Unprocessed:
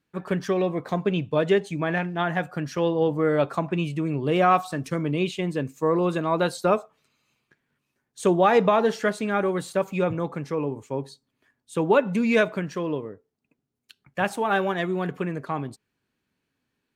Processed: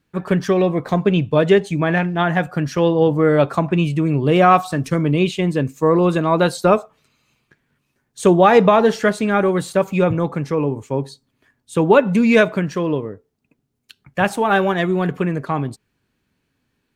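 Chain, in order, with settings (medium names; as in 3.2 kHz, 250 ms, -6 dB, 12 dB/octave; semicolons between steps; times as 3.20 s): bass shelf 110 Hz +9 dB; trim +6.5 dB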